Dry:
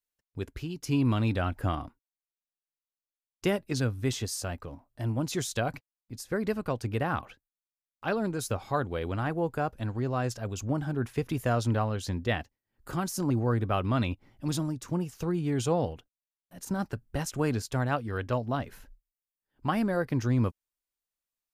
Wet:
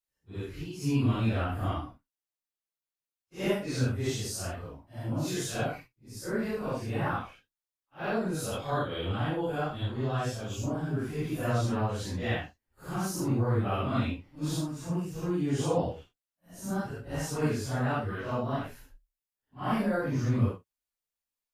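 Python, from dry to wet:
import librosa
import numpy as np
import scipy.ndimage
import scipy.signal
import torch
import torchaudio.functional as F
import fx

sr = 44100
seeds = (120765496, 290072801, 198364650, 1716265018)

y = fx.phase_scramble(x, sr, seeds[0], window_ms=200)
y = fx.peak_eq(y, sr, hz=3300.0, db=14.0, octaves=0.25, at=(8.51, 10.57))
y = y * librosa.db_to_amplitude(-1.0)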